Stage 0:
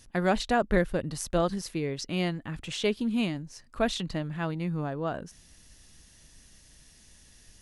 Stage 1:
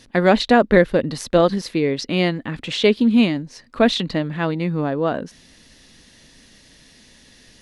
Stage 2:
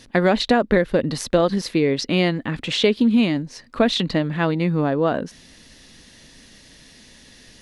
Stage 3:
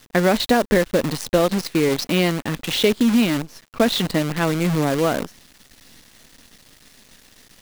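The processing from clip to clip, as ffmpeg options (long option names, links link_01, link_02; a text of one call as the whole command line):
ffmpeg -i in.wav -af "equalizer=frequency=125:width_type=o:width=1:gain=4,equalizer=frequency=250:width_type=o:width=1:gain=12,equalizer=frequency=500:width_type=o:width=1:gain=10,equalizer=frequency=1000:width_type=o:width=1:gain=6,equalizer=frequency=2000:width_type=o:width=1:gain=9,equalizer=frequency=4000:width_type=o:width=1:gain=11,volume=-1dB" out.wav
ffmpeg -i in.wav -af "acompressor=threshold=-15dB:ratio=6,volume=2dB" out.wav
ffmpeg -i in.wav -af "acrusher=bits=5:dc=4:mix=0:aa=0.000001" out.wav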